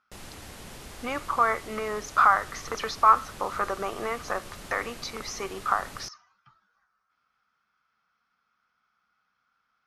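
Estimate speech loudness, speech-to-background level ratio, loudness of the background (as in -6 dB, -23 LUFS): -27.0 LUFS, 16.5 dB, -43.5 LUFS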